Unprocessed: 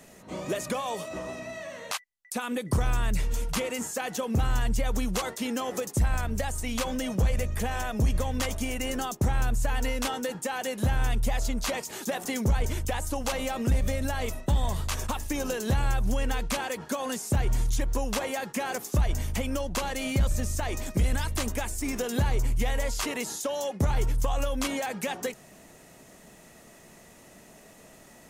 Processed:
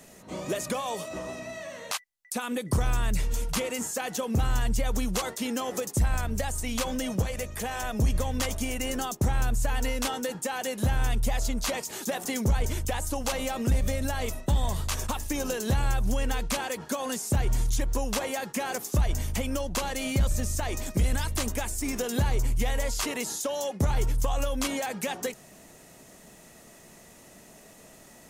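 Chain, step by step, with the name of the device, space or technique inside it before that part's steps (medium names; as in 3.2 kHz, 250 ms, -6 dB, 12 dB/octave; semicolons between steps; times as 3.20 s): 7.22–7.83 s: bass shelf 160 Hz -11.5 dB; exciter from parts (in parallel at -9 dB: high-pass 2.9 kHz 12 dB/octave + saturation -26 dBFS, distortion -20 dB)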